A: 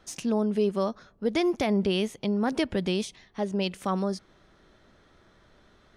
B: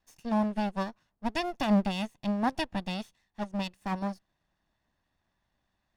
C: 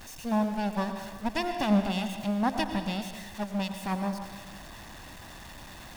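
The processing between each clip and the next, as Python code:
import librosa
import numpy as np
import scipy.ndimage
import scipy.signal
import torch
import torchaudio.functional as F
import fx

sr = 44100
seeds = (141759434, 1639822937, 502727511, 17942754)

y1 = fx.lower_of_two(x, sr, delay_ms=1.1)
y1 = fx.upward_expand(y1, sr, threshold_db=-35.0, expansion=2.5)
y1 = F.gain(torch.from_numpy(y1), 2.0).numpy()
y2 = y1 + 0.5 * 10.0 ** (-40.0 / 20.0) * np.sign(y1)
y2 = fx.rev_plate(y2, sr, seeds[0], rt60_s=1.4, hf_ratio=0.9, predelay_ms=80, drr_db=7.0)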